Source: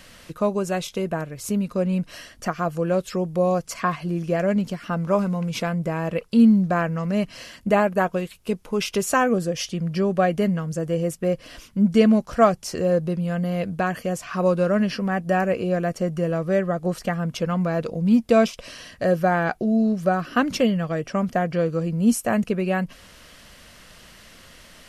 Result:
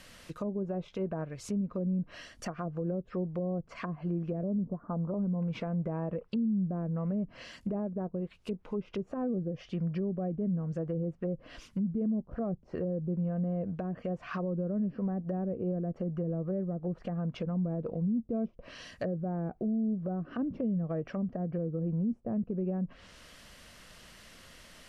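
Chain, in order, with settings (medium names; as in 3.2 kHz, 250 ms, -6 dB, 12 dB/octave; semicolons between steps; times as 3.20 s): low-pass that closes with the level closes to 360 Hz, closed at -19 dBFS; 4.43–5.14 s: steep low-pass 1.2 kHz 48 dB/octave; peak limiter -19 dBFS, peak gain reduction 10.5 dB; trim -6 dB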